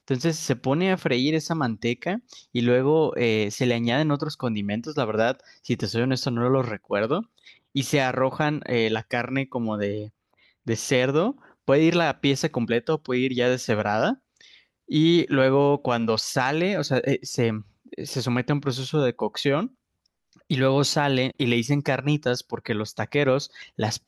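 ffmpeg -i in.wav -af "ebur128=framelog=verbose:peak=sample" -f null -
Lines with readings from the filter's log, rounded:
Integrated loudness:
  I:         -24.0 LUFS
  Threshold: -34.4 LUFS
Loudness range:
  LRA:         3.2 LU
  Threshold: -44.4 LUFS
  LRA low:   -26.0 LUFS
  LRA high:  -22.8 LUFS
Sample peak:
  Peak:       -6.3 dBFS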